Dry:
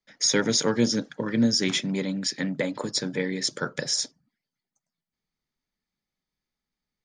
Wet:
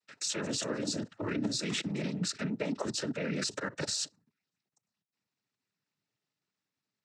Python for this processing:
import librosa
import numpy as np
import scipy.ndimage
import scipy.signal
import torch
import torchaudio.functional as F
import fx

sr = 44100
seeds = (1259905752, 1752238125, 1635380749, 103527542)

y = fx.level_steps(x, sr, step_db=18)
y = fx.noise_vocoder(y, sr, seeds[0], bands=12)
y = y * 10.0 ** (3.0 / 20.0)